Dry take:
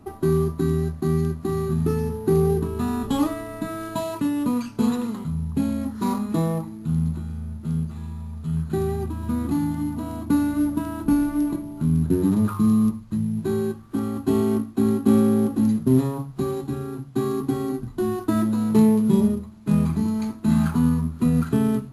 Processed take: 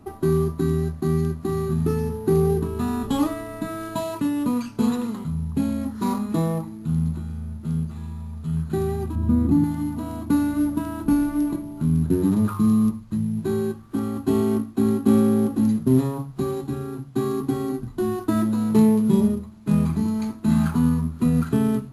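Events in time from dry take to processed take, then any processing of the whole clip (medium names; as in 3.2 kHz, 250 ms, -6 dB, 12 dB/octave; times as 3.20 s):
9.15–9.64 s: tilt shelf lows +7.5 dB, about 650 Hz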